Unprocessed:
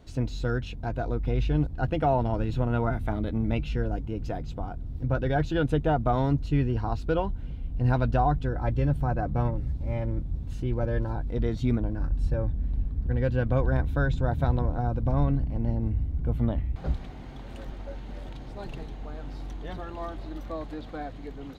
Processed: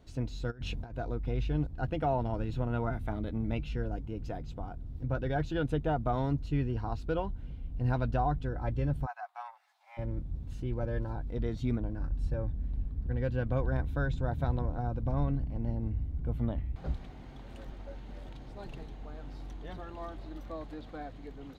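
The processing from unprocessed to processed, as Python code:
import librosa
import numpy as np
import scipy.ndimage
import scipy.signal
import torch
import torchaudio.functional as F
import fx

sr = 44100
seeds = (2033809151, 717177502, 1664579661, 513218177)

y = fx.over_compress(x, sr, threshold_db=-35.0, ratio=-0.5, at=(0.5, 0.94), fade=0.02)
y = fx.steep_highpass(y, sr, hz=720.0, slope=72, at=(9.05, 9.97), fade=0.02)
y = y * librosa.db_to_amplitude(-6.0)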